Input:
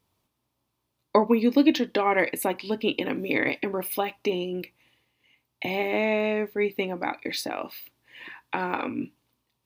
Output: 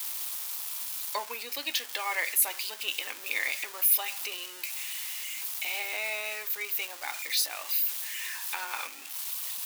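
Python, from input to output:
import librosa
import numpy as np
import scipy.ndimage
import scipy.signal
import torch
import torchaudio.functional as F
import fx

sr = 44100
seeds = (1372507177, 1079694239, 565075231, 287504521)

y = x + 0.5 * 10.0 ** (-32.0 / 20.0) * np.sign(x)
y = scipy.signal.sosfilt(scipy.signal.butter(2, 730.0, 'highpass', fs=sr, output='sos'), y)
y = fx.tilt_eq(y, sr, slope=4.5)
y = y * librosa.db_to_amplitude(-8.5)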